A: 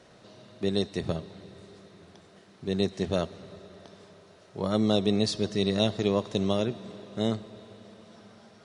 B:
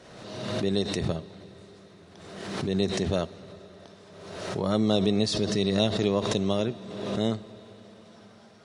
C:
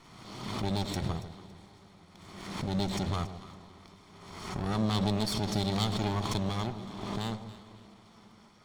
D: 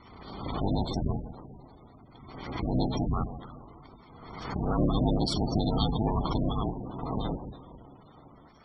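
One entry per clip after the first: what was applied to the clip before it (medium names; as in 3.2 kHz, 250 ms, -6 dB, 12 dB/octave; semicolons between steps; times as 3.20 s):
swell ahead of each attack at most 42 dB/s
comb filter that takes the minimum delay 0.91 ms; on a send: echo whose repeats swap between lows and highs 140 ms, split 880 Hz, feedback 51%, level -10 dB; on the sum: trim -3.5 dB
cycle switcher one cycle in 3, inverted; spectral gate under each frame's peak -15 dB strong; trim +4 dB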